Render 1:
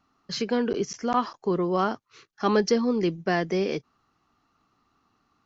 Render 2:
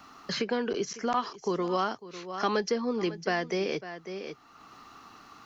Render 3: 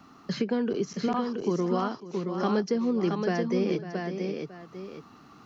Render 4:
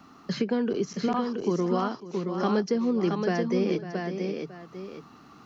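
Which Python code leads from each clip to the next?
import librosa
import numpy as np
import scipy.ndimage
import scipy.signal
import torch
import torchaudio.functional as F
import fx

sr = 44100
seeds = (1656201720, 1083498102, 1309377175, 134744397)

y1 = fx.low_shelf(x, sr, hz=370.0, db=-9.0)
y1 = y1 + 10.0 ** (-18.0 / 20.0) * np.pad(y1, (int(549 * sr / 1000.0), 0))[:len(y1)]
y1 = fx.band_squash(y1, sr, depth_pct=70)
y1 = y1 * 10.0 ** (-1.0 / 20.0)
y2 = fx.peak_eq(y1, sr, hz=170.0, db=13.0, octaves=2.8)
y2 = y2 + 10.0 ** (-4.5 / 20.0) * np.pad(y2, (int(674 * sr / 1000.0), 0))[:len(y2)]
y2 = y2 * 10.0 ** (-6.0 / 20.0)
y3 = fx.hum_notches(y2, sr, base_hz=50, count=3)
y3 = y3 * 10.0 ** (1.0 / 20.0)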